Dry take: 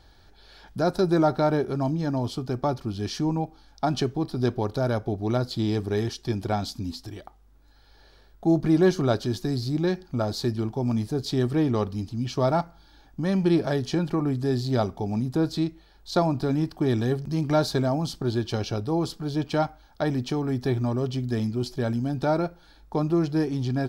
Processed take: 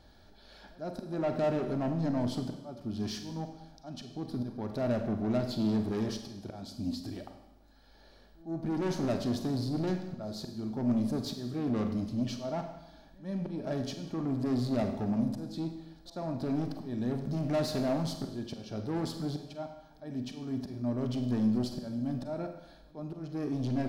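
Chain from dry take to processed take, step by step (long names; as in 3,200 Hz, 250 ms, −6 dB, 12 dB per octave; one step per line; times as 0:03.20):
volume swells 463 ms
soft clipping −27.5 dBFS, distortion −8 dB
hollow resonant body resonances 230/600 Hz, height 9 dB, ringing for 30 ms
backwards echo 108 ms −22.5 dB
four-comb reverb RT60 0.96 s, combs from 33 ms, DRR 6 dB
level −5 dB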